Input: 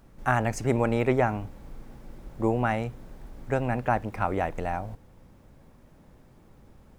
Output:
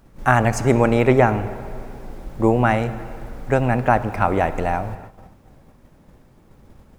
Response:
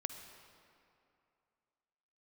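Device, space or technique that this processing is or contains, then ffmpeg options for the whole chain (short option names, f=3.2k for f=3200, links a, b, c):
keyed gated reverb: -filter_complex "[0:a]asplit=3[a][b][c];[1:a]atrim=start_sample=2205[d];[b][d]afir=irnorm=-1:irlink=0[e];[c]apad=whole_len=308123[f];[e][f]sidechaingate=range=-33dB:threshold=-50dB:ratio=16:detection=peak,volume=1dB[g];[a][g]amix=inputs=2:normalize=0,volume=2.5dB"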